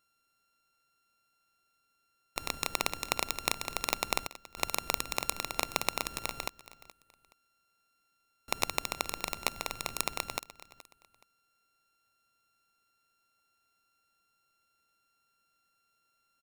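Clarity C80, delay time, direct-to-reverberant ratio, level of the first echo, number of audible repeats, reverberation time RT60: no reverb audible, 423 ms, no reverb audible, −18.0 dB, 2, no reverb audible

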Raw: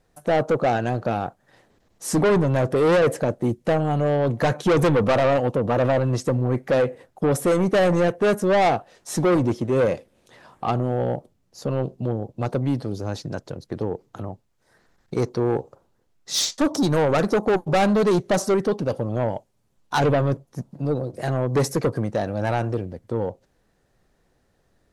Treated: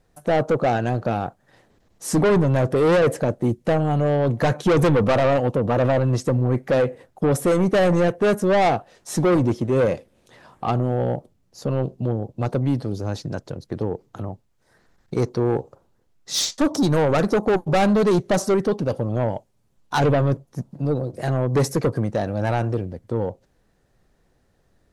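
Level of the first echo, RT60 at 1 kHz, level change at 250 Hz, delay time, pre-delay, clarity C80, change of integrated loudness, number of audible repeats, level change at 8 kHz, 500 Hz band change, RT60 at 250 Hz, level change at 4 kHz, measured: no echo audible, no reverb audible, +1.5 dB, no echo audible, no reverb audible, no reverb audible, +1.0 dB, no echo audible, 0.0 dB, +0.5 dB, no reverb audible, 0.0 dB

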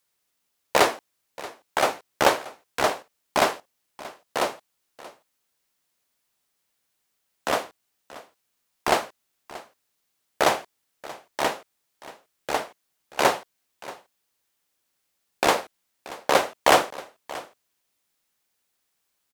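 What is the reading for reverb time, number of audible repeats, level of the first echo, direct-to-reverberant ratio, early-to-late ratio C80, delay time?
no reverb audible, 1, −18.5 dB, no reverb audible, no reverb audible, 631 ms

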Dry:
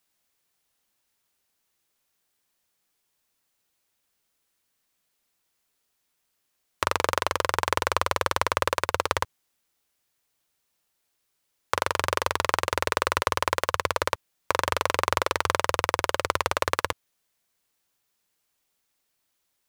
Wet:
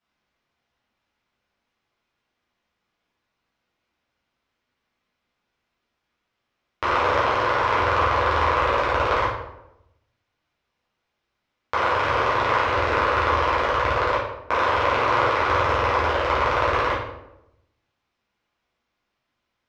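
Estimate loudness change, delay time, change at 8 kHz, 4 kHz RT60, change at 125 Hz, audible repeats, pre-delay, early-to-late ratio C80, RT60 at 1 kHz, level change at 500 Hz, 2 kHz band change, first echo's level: +5.5 dB, no echo audible, below −10 dB, 0.55 s, +7.0 dB, no echo audible, 7 ms, 5.5 dB, 0.80 s, +6.0 dB, +5.0 dB, no echo audible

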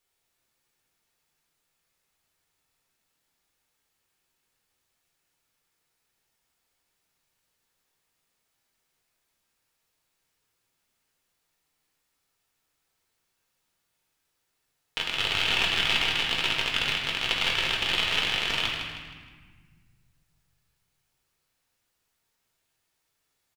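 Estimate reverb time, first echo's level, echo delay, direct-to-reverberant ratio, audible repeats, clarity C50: 1.5 s, −7.5 dB, 157 ms, −3.0 dB, 2, 1.5 dB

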